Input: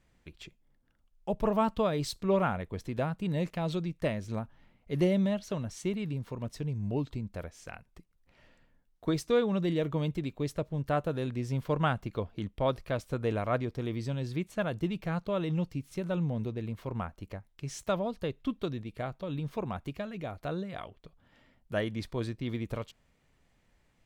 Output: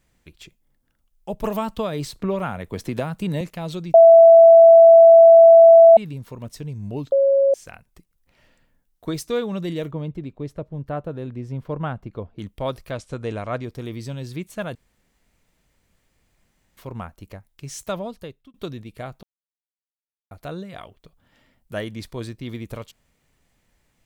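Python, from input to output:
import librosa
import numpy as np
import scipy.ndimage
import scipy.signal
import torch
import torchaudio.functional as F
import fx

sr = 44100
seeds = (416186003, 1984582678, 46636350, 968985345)

y = fx.band_squash(x, sr, depth_pct=100, at=(1.44, 3.41))
y = fx.lowpass(y, sr, hz=1000.0, slope=6, at=(9.91, 12.39))
y = fx.lowpass(y, sr, hz=8700.0, slope=24, at=(12.91, 13.64))
y = fx.edit(y, sr, fx.bleep(start_s=3.94, length_s=2.03, hz=664.0, db=-7.0),
    fx.bleep(start_s=7.12, length_s=0.42, hz=549.0, db=-15.0),
    fx.room_tone_fill(start_s=14.75, length_s=2.02),
    fx.fade_out_span(start_s=18.04, length_s=0.5),
    fx.silence(start_s=19.23, length_s=1.08), tone=tone)
y = fx.high_shelf(y, sr, hz=6800.0, db=11.5)
y = F.gain(torch.from_numpy(y), 2.0).numpy()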